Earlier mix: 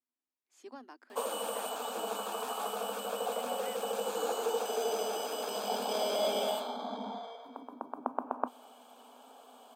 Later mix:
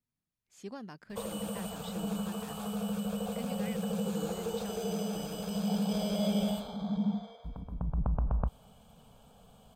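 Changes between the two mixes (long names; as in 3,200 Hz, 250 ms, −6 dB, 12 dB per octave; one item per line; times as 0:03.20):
background −9.5 dB
master: remove Chebyshev high-pass with heavy ripple 240 Hz, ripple 6 dB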